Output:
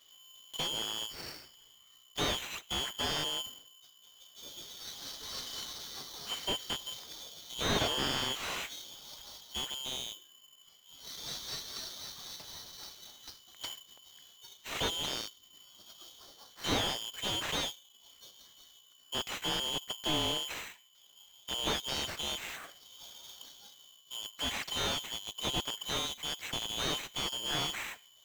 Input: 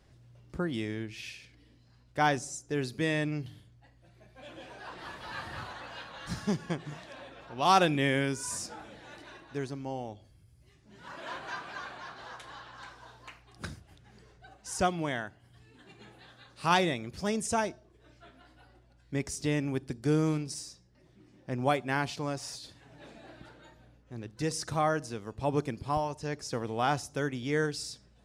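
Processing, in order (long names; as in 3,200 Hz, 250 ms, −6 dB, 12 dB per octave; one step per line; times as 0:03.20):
band-splitting scrambler in four parts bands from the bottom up 3412
sample-rate reduction 10,000 Hz, jitter 0%
slew-rate limiting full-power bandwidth 94 Hz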